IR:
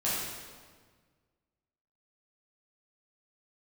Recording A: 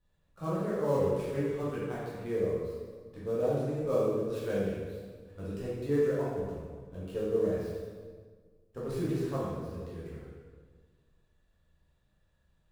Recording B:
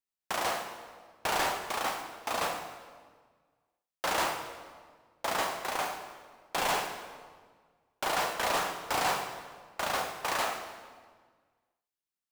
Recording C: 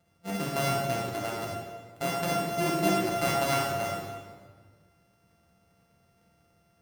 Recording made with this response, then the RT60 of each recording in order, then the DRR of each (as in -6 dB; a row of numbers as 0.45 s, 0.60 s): A; 1.6 s, 1.6 s, 1.6 s; -9.0 dB, 4.0 dB, -4.0 dB